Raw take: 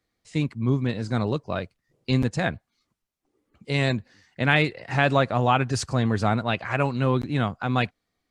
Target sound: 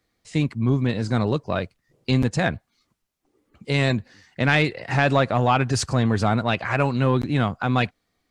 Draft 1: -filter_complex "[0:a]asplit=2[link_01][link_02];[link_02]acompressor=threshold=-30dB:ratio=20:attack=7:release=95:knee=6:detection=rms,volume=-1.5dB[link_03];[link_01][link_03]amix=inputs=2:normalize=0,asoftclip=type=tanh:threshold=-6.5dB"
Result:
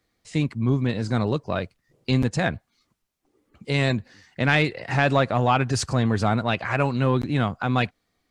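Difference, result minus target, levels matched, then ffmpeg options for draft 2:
downward compressor: peak gain reduction +6 dB
-filter_complex "[0:a]asplit=2[link_01][link_02];[link_02]acompressor=threshold=-23.5dB:ratio=20:attack=7:release=95:knee=6:detection=rms,volume=-1.5dB[link_03];[link_01][link_03]amix=inputs=2:normalize=0,asoftclip=type=tanh:threshold=-6.5dB"

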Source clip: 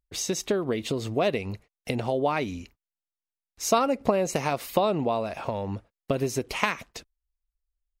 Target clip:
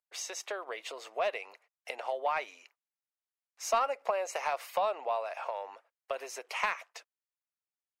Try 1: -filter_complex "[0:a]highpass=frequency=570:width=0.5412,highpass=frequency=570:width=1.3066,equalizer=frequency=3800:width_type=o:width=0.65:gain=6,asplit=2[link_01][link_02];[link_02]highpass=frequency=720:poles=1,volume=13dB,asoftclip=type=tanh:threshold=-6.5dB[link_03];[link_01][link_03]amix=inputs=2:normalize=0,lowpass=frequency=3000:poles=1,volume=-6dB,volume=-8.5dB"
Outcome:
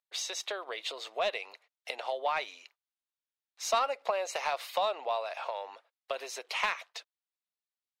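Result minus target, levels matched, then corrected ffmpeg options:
4,000 Hz band +6.5 dB
-filter_complex "[0:a]highpass=frequency=570:width=0.5412,highpass=frequency=570:width=1.3066,equalizer=frequency=3800:width_type=o:width=0.65:gain=-5.5,asplit=2[link_01][link_02];[link_02]highpass=frequency=720:poles=1,volume=13dB,asoftclip=type=tanh:threshold=-6.5dB[link_03];[link_01][link_03]amix=inputs=2:normalize=0,lowpass=frequency=3000:poles=1,volume=-6dB,volume=-8.5dB"

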